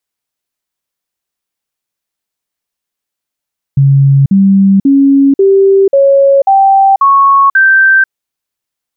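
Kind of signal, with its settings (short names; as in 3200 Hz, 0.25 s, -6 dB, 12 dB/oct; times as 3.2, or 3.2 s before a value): stepped sine 138 Hz up, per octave 2, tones 8, 0.49 s, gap 0.05 s -3 dBFS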